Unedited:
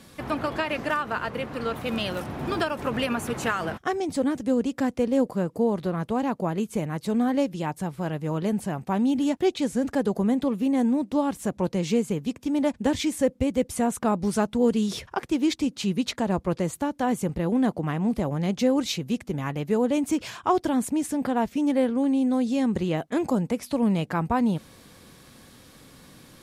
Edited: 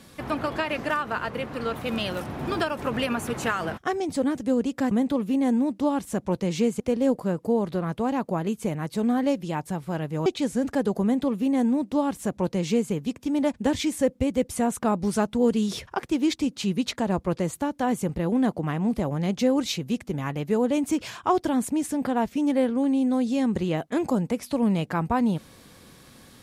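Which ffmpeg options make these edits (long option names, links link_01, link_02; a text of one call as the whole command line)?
ffmpeg -i in.wav -filter_complex "[0:a]asplit=4[link_01][link_02][link_03][link_04];[link_01]atrim=end=4.912[link_05];[link_02]atrim=start=10.228:end=12.122[link_06];[link_03]atrim=start=4.908:end=8.372[link_07];[link_04]atrim=start=9.458[link_08];[link_05][link_06]acrossfade=duration=0.004:curve1=hsin:curve2=hsin[link_09];[link_09][link_07]acrossfade=duration=0.004:curve1=hsin:curve2=hsin[link_10];[link_10][link_08]acrossfade=duration=0.004:curve1=hsin:curve2=hsin" out.wav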